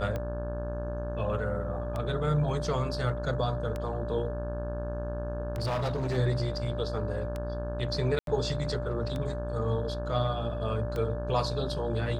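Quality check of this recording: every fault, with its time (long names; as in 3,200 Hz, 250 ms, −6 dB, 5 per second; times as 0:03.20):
mains buzz 60 Hz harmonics 29 −35 dBFS
scratch tick 33 1/3 rpm −21 dBFS
whistle 590 Hz −36 dBFS
0:05.58–0:06.18: clipping −26.5 dBFS
0:08.19–0:08.27: drop-out 82 ms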